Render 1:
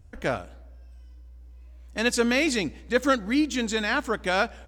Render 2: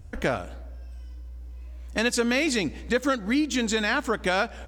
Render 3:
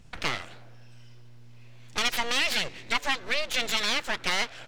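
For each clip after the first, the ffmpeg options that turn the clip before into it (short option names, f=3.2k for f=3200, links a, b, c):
-af "acompressor=threshold=-30dB:ratio=3,volume=7dB"
-af "aeval=exprs='abs(val(0))':c=same,equalizer=f=3.2k:w=0.42:g=13,volume=-7dB"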